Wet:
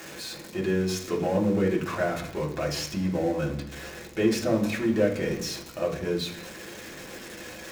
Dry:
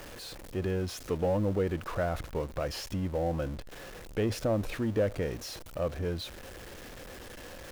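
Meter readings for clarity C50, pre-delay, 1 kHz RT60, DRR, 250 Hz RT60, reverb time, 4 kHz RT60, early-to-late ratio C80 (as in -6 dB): 9.0 dB, 3 ms, 0.70 s, -2.5 dB, 0.85 s, 0.65 s, 0.85 s, 12.0 dB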